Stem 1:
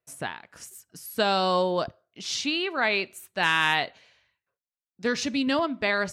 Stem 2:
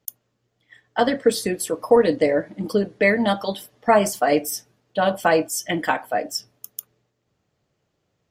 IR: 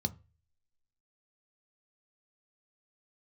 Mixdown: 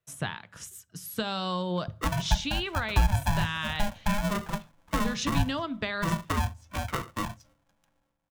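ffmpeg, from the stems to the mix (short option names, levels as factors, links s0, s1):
-filter_complex "[0:a]equalizer=f=3800:w=1.9:g=5,acompressor=threshold=0.0562:ratio=6,volume=1.12,asplit=2[s0][s1];[s1]volume=0.211[s2];[1:a]lowpass=1500,aeval=exprs='val(0)*sgn(sin(2*PI*410*n/s))':c=same,adelay=1050,volume=0.422,asplit=2[s3][s4];[s4]volume=0.112[s5];[2:a]atrim=start_sample=2205[s6];[s2][s5]amix=inputs=2:normalize=0[s7];[s7][s6]afir=irnorm=-1:irlink=0[s8];[s0][s3][s8]amix=inputs=3:normalize=0,lowshelf=f=83:g=6.5,acrossover=split=200[s9][s10];[s10]acompressor=threshold=0.0447:ratio=6[s11];[s9][s11]amix=inputs=2:normalize=0"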